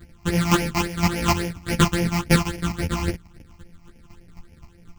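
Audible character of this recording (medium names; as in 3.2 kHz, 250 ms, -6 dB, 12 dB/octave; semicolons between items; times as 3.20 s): a buzz of ramps at a fixed pitch in blocks of 256 samples; phasing stages 8, 3.6 Hz, lowest notch 460–1200 Hz; chopped level 3.9 Hz, depth 60%, duty 15%; a shimmering, thickened sound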